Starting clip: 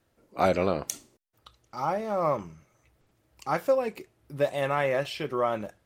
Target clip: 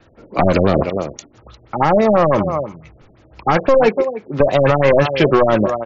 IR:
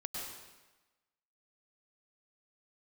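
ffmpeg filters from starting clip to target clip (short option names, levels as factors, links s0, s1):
-filter_complex "[0:a]asettb=1/sr,asplit=3[s0][s1][s2];[s0]atrim=end=3.744[s3];[s1]atrim=start=3.74:end=4.4,asetpts=PTS-STARTPTS,afade=t=in:d=0.004:c=qsin,afade=t=out:st=0.656:d=0.004:c=qsin,highpass=210[s4];[s2]atrim=start=4.396[s5];[s3][s4]acrossfade=d=0.004:c1=hsin:c2=qsin[s6];[s6][s5]acrossfade=d=0.004:c1=qsin:c2=hsin,asplit=2[s7][s8];[s8]adelay=291.5,volume=0.178,highshelf=f=4000:g=-6.56[s9];[s7][s9]amix=inputs=2:normalize=0,acrossover=split=300|3200[s10][s11][s12];[s11]aeval=exprs='clip(val(0),-1,0.0251)':c=same[s13];[s10][s13][s12]amix=inputs=3:normalize=0,alimiter=level_in=11.9:limit=0.891:release=50:level=0:latency=1,afftfilt=real='re*lt(b*sr/1024,650*pow(7600/650,0.5+0.5*sin(2*PI*6*pts/sr)))':imag='im*lt(b*sr/1024,650*pow(7600/650,0.5+0.5*sin(2*PI*6*pts/sr)))':win_size=1024:overlap=0.75,volume=0.891"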